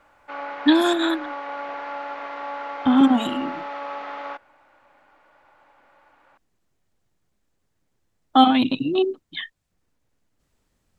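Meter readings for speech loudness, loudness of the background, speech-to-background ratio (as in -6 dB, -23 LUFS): -20.0 LUFS, -33.0 LUFS, 13.0 dB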